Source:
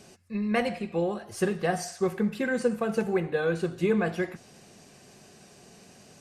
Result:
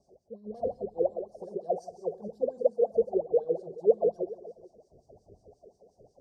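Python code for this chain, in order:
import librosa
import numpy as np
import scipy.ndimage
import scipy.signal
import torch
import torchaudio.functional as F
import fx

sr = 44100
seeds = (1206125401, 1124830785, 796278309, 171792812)

p1 = fx.dmg_wind(x, sr, seeds[0], corner_hz=100.0, level_db=-40.0)
p2 = fx.fold_sine(p1, sr, drive_db=7, ceiling_db=-12.0)
p3 = p1 + (p2 * 10.0 ** (-5.0 / 20.0))
p4 = p3 + 10.0 ** (-8.5 / 20.0) * np.pad(p3, (int(136 * sr / 1000.0), 0))[:len(p3)]
p5 = fx.wah_lfo(p4, sr, hz=5.6, low_hz=420.0, high_hz=1800.0, q=14.0)
p6 = scipy.signal.sosfilt(scipy.signal.ellip(3, 1.0, 50, [650.0, 5100.0], 'bandstop', fs=sr, output='sos'), p5)
p7 = fx.low_shelf(p6, sr, hz=95.0, db=8.5)
p8 = p7 + fx.echo_single(p7, sr, ms=424, db=-19.5, dry=0)
y = p8 * 10.0 ** (4.5 / 20.0)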